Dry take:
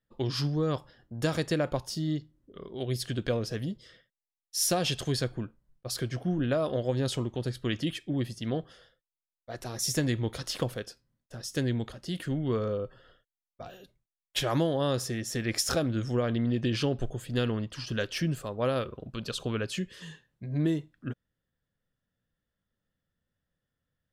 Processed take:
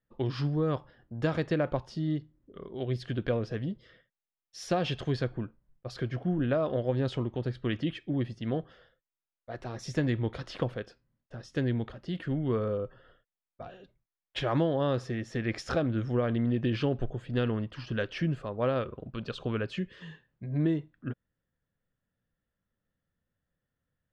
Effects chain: LPF 2600 Hz 12 dB/oct

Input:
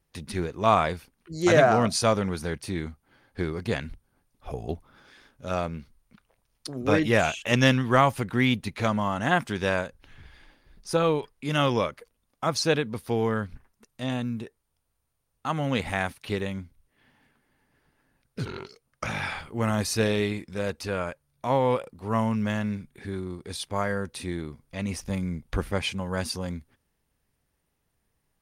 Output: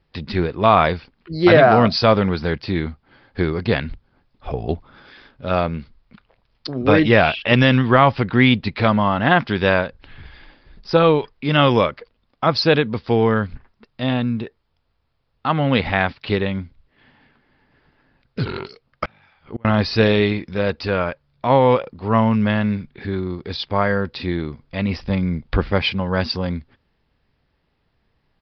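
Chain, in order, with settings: 19.05–19.65 flipped gate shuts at -25 dBFS, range -33 dB; downsampling 11025 Hz; maximiser +10 dB; gain -1 dB

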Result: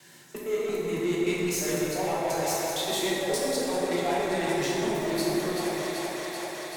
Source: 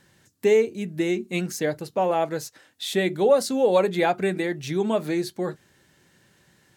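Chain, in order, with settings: local time reversal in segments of 0.115 s; in parallel at -4 dB: overloaded stage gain 25.5 dB; on the sum: HPF 150 Hz 24 dB/oct; high shelf 4500 Hz +5.5 dB; thinning echo 0.384 s, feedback 77%, high-pass 340 Hz, level -12 dB; reverse; compressor, threshold -27 dBFS, peak gain reduction 14 dB; reverse; soft clip -26.5 dBFS, distortion -14 dB; thirty-one-band EQ 200 Hz -9 dB, 315 Hz -3 dB, 500 Hz -6 dB, 1250 Hz -3 dB; plate-style reverb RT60 3.2 s, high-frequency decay 0.5×, DRR -6 dB

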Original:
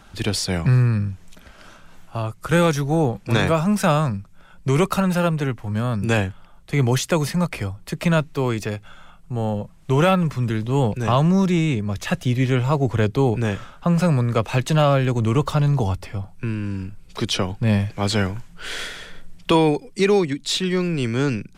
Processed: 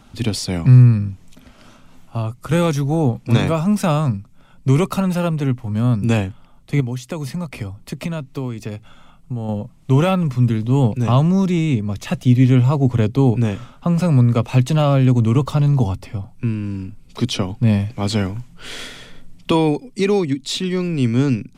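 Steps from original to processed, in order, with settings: thirty-one-band EQ 125 Hz +9 dB, 250 Hz +11 dB, 1600 Hz -7 dB; 6.8–9.49 compressor 6:1, threshold -21 dBFS, peak gain reduction 13 dB; gain -1 dB

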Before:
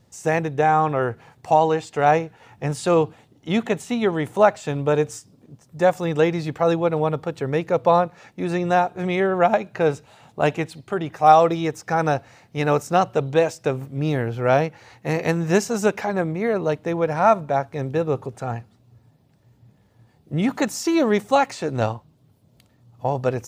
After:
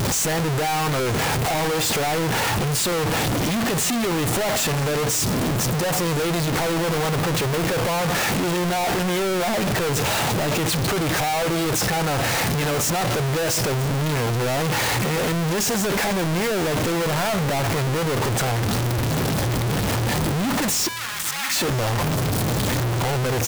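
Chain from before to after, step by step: infinite clipping; 20.88–21.56 HPF 1100 Hz 24 dB/oct; echo 0.978 s -20.5 dB

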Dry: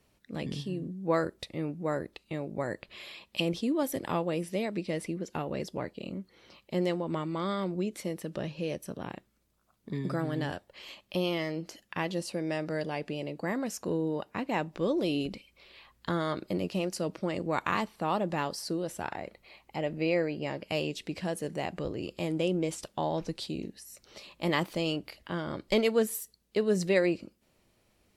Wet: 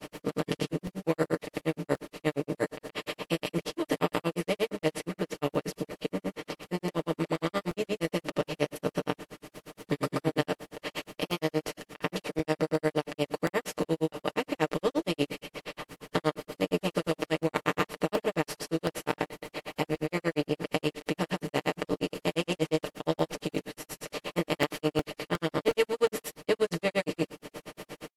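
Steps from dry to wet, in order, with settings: per-bin compression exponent 0.4; grains 80 ms, grains 8.5/s, pitch spread up and down by 0 st; comb 6.6 ms, depth 74%; crackling interface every 0.36 s, samples 64, repeat, from 0.87; gain -3 dB; AAC 96 kbps 44100 Hz

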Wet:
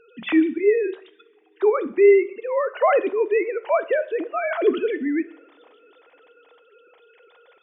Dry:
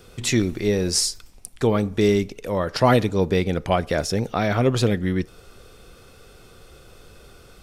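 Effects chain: sine-wave speech; two-slope reverb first 0.5 s, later 3.7 s, from -28 dB, DRR 12 dB

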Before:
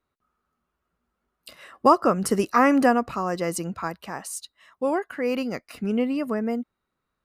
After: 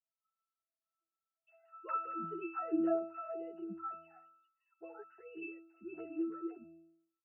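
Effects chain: sine-wave speech; octave resonator E, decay 0.73 s; endless flanger 10.6 ms +1.5 Hz; gain +9 dB

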